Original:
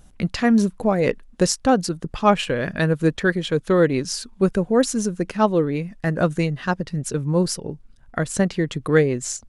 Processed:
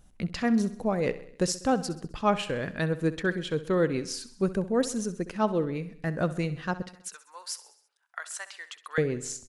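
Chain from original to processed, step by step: 6.82–8.98 s: high-pass 980 Hz 24 dB/octave; feedback delay 65 ms, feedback 56%, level -15.5 dB; trim -8 dB

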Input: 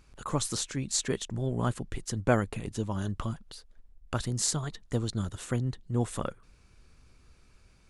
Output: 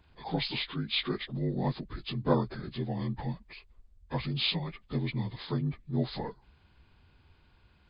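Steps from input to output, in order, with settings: frequency axis rescaled in octaves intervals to 79%

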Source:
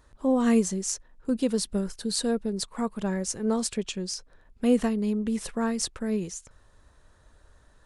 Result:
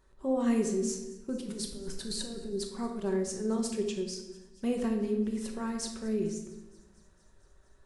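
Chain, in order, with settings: peaking EQ 390 Hz +12 dB 0.21 oct; 1.38–2.53 s: compressor with a negative ratio -32 dBFS, ratio -1; on a send: feedback echo behind a high-pass 229 ms, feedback 73%, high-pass 3.5 kHz, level -21 dB; on the sum: simulated room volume 510 m³, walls mixed, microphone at 1.1 m; trim -9 dB

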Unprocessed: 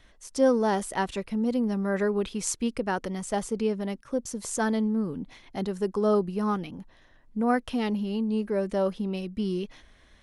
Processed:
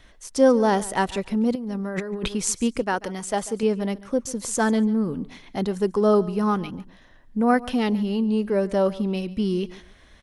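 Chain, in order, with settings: 2.82–3.63 s: bass shelf 250 Hz -8.5 dB; feedback delay 141 ms, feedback 23%, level -19 dB; 1.55–2.28 s: compressor with a negative ratio -34 dBFS, ratio -1; trim +5 dB

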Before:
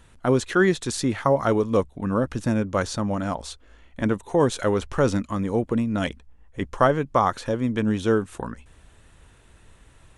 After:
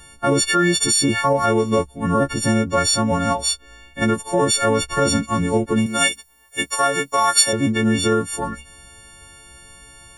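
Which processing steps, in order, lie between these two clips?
partials quantised in pitch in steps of 4 st; peak limiter -14 dBFS, peak gain reduction 9.5 dB; 5.86–7.53 s: RIAA curve recording; trim +5.5 dB

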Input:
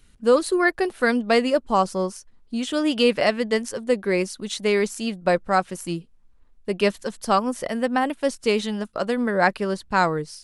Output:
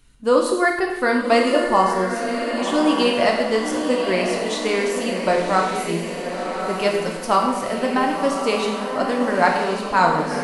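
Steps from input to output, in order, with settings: peaking EQ 960 Hz +4.5 dB 0.52 oct; echo that smears into a reverb 1084 ms, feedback 53%, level -6.5 dB; gated-style reverb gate 340 ms falling, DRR 0.5 dB; trim -1 dB

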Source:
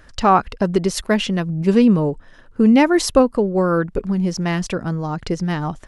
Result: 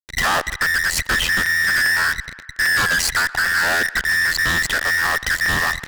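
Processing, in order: every band turned upside down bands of 2 kHz; ring modulator 42 Hz; bass shelf 130 Hz +10 dB; in parallel at +2 dB: compression, threshold -24 dBFS, peak gain reduction 13.5 dB; on the sum: band-stop 2.2 kHz, Q 17; fuzz box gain 30 dB, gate -29 dBFS; on a send: band-passed feedback delay 123 ms, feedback 68%, band-pass 1.5 kHz, level -19 dB; on the sum: crackling interface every 0.40 s, samples 256, repeat, from 0.65 s; trim -2.5 dB

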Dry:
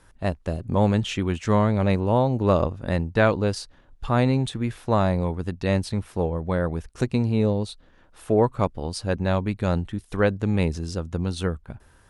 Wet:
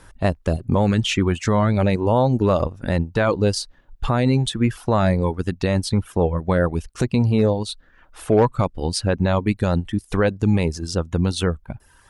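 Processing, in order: 7.38–8.61 s: hard clipper -12 dBFS, distortion -34 dB; reverb removal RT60 0.83 s; peak limiter -16.5 dBFS, peak gain reduction 10.5 dB; trim +8.5 dB

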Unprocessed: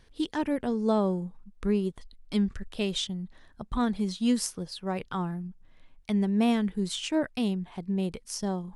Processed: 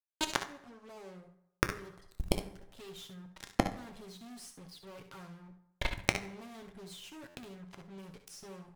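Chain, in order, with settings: fade-in on the opening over 2.57 s; comb 7.3 ms, depth 81%; fuzz box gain 41 dB, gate -42 dBFS; inverted gate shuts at -16 dBFS, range -41 dB; early reflections 61 ms -12 dB, 71 ms -13 dB; on a send at -8.5 dB: reverberation RT60 0.85 s, pre-delay 4 ms; on the sum: buffer glitch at 7.28 s, samples 512, times 5; trim +6.5 dB

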